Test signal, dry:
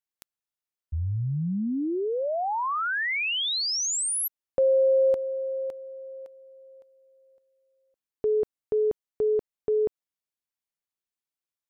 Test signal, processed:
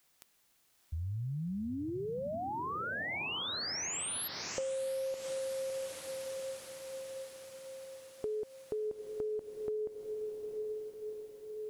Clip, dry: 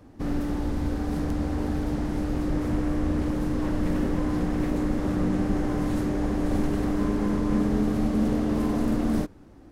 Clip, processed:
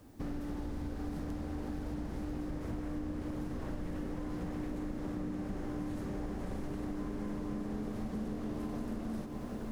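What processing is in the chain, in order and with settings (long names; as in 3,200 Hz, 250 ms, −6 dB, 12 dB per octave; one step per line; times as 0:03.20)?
background noise white −65 dBFS
feedback delay with all-pass diffusion 722 ms, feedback 61%, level −9 dB
downward compressor 6 to 1, threshold −29 dBFS
level −6 dB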